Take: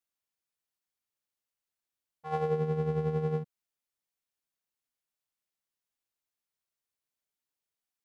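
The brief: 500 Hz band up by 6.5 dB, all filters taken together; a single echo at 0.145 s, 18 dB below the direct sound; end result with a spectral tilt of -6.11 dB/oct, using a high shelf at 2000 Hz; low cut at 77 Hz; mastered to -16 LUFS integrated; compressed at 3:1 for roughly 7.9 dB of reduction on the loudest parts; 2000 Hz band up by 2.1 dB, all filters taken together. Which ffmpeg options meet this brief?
-af "highpass=77,equalizer=f=500:t=o:g=7,highshelf=f=2k:g=-7,equalizer=f=2k:t=o:g=6,acompressor=threshold=-30dB:ratio=3,aecho=1:1:145:0.126,volume=17.5dB"

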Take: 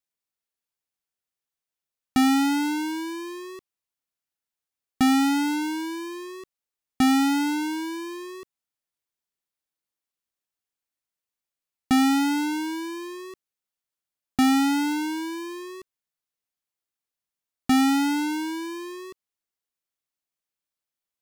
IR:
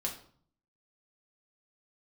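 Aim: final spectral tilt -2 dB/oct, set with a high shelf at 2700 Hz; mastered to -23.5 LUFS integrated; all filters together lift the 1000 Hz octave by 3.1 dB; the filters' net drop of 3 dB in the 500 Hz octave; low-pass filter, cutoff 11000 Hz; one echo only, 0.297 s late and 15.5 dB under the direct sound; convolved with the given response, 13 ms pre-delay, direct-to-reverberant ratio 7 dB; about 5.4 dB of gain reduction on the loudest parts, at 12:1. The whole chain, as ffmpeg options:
-filter_complex "[0:a]lowpass=11k,equalizer=f=500:t=o:g=-8,equalizer=f=1k:t=o:g=6,highshelf=f=2.7k:g=7.5,acompressor=threshold=-21dB:ratio=12,aecho=1:1:297:0.168,asplit=2[a][b];[1:a]atrim=start_sample=2205,adelay=13[c];[b][c]afir=irnorm=-1:irlink=0,volume=-9dB[d];[a][d]amix=inputs=2:normalize=0,volume=3.5dB"

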